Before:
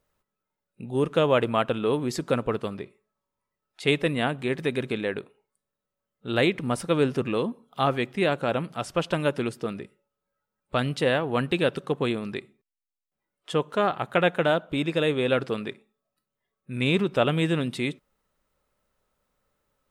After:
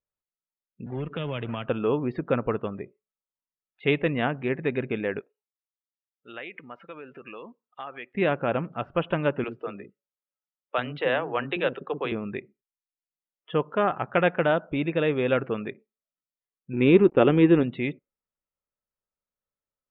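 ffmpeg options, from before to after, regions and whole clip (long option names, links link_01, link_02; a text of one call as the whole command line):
ffmpeg -i in.wav -filter_complex "[0:a]asettb=1/sr,asplit=3[link_01][link_02][link_03];[link_01]atrim=end=0.864[link_04];[link_02]atrim=start=0.86:end=1.67,asetpts=PTS-STARTPTS,afade=type=in:duration=0.004:curve=qsin,afade=type=out:start_time=0.806:duration=0.004:curve=qsin,equalizer=frequency=7500:width_type=o:width=1:gain=12,acrossover=split=170|3000[link_05][link_06][link_07];[link_06]acompressor=threshold=-31dB:ratio=10:attack=3.2:release=140:knee=2.83:detection=peak[link_08];[link_05][link_08][link_07]amix=inputs=3:normalize=0,acrusher=bits=2:mode=log:mix=0:aa=0.000001[link_09];[link_03]atrim=start=1.666[link_10];[link_04][link_09]acrossfade=duration=0.004:curve1=hsin:curve2=qsin[link_11];[link_11][link_10]acrossfade=duration=0.004:curve1=qsin:curve2=hsin,asettb=1/sr,asplit=3[link_12][link_13][link_14];[link_12]atrim=end=5.204[link_15];[link_13]atrim=start=5.2:end=8.15,asetpts=PTS-STARTPTS,afade=type=in:duration=0.004:curve=qsin,afade=type=out:start_time=2.946:duration=0.004:curve=qsin,acompressor=threshold=-26dB:ratio=8:attack=3.2:release=140:knee=1:detection=peak,highpass=frequency=1400:poles=1[link_16];[link_14]atrim=start=8.146[link_17];[link_15][link_16]acrossfade=duration=0.004:curve1=hsin:curve2=qsin[link_18];[link_18][link_17]acrossfade=duration=0.004:curve1=qsin:curve2=hsin,asettb=1/sr,asplit=3[link_19][link_20][link_21];[link_19]atrim=end=9.444[link_22];[link_20]atrim=start=9.44:end=12.12,asetpts=PTS-STARTPTS,afade=type=in:duration=0.004:curve=qsin,afade=type=out:start_time=2.676:duration=0.004:curve=qsin,bass=frequency=250:gain=-10,treble=frequency=4000:gain=6,acrossover=split=320[link_23][link_24];[link_23]adelay=40[link_25];[link_25][link_24]amix=inputs=2:normalize=0,atrim=end_sample=118188[link_26];[link_21]atrim=start=12.116[link_27];[link_22][link_26]acrossfade=duration=0.004:curve1=hsin:curve2=qsin[link_28];[link_28][link_27]acrossfade=duration=0.004:curve1=qsin:curve2=hsin,asettb=1/sr,asplit=3[link_29][link_30][link_31];[link_29]atrim=end=16.734[link_32];[link_30]atrim=start=16.73:end=17.63,asetpts=PTS-STARTPTS,afade=type=in:duration=0.004:curve=qsin,afade=type=out:start_time=0.896:duration=0.004:curve=qsin,aeval=exprs='sgn(val(0))*max(abs(val(0))-0.00891,0)':channel_layout=same,equalizer=frequency=350:width_type=o:width=1.2:gain=11,bandreject=frequency=630:width=7.9[link_33];[link_31]atrim=start=17.626[link_34];[link_32][link_33]acrossfade=duration=0.004:curve1=hsin:curve2=qsin[link_35];[link_35][link_34]acrossfade=duration=0.004:curve1=qsin:curve2=hsin,lowpass=frequency=2900:width=0.5412,lowpass=frequency=2900:width=1.3066,afftdn=noise_reduction=22:noise_floor=-46" out.wav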